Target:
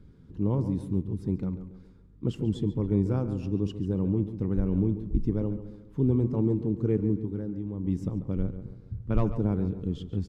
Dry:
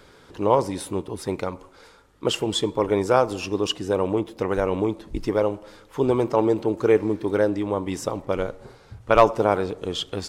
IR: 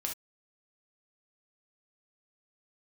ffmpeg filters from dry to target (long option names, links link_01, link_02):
-filter_complex "[0:a]firequalizer=gain_entry='entry(190,0);entry(380,-15);entry(600,-27);entry(8600,-30)':delay=0.05:min_phase=1,asplit=3[link_01][link_02][link_03];[link_01]afade=type=out:start_time=7.17:duration=0.02[link_04];[link_02]acompressor=threshold=-35dB:ratio=6,afade=type=in:start_time=7.17:duration=0.02,afade=type=out:start_time=7.83:duration=0.02[link_05];[link_03]afade=type=in:start_time=7.83:duration=0.02[link_06];[link_04][link_05][link_06]amix=inputs=3:normalize=0,asplit=2[link_07][link_08];[link_08]adelay=140,lowpass=frequency=3100:poles=1,volume=-11dB,asplit=2[link_09][link_10];[link_10]adelay=140,lowpass=frequency=3100:poles=1,volume=0.44,asplit=2[link_11][link_12];[link_12]adelay=140,lowpass=frequency=3100:poles=1,volume=0.44,asplit=2[link_13][link_14];[link_14]adelay=140,lowpass=frequency=3100:poles=1,volume=0.44,asplit=2[link_15][link_16];[link_16]adelay=140,lowpass=frequency=3100:poles=1,volume=0.44[link_17];[link_09][link_11][link_13][link_15][link_17]amix=inputs=5:normalize=0[link_18];[link_07][link_18]amix=inputs=2:normalize=0,volume=5.5dB"